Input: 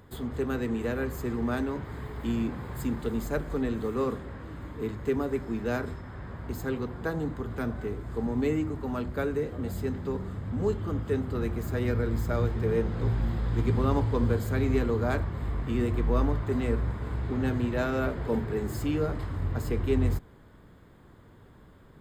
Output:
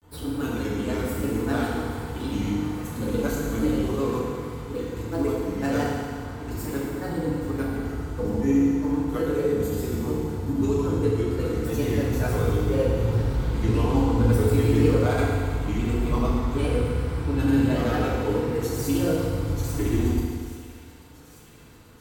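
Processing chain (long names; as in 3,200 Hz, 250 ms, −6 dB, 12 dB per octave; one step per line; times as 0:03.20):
parametric band 12,000 Hz +9.5 dB 2 octaves
notch filter 1,800 Hz, Q 7.2
granular cloud, pitch spread up and down by 3 semitones
delay with a high-pass on its return 837 ms, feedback 73%, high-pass 2,100 Hz, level −15.5 dB
feedback delay network reverb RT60 1.9 s, low-frequency decay 0.9×, high-frequency decay 1×, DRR −5.5 dB
level −1.5 dB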